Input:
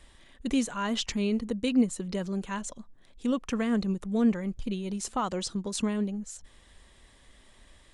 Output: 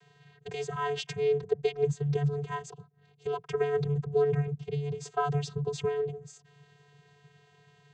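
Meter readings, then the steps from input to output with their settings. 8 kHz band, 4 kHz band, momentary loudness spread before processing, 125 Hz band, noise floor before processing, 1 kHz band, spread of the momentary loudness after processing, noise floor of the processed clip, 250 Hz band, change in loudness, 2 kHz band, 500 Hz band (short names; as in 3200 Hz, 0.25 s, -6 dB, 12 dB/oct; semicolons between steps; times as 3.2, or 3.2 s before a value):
-10.0 dB, -6.5 dB, 10 LU, +7.0 dB, -58 dBFS, +1.5 dB, 10 LU, -63 dBFS, -13.0 dB, -1.0 dB, -1.5 dB, +6.5 dB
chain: vocoder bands 16, square 144 Hz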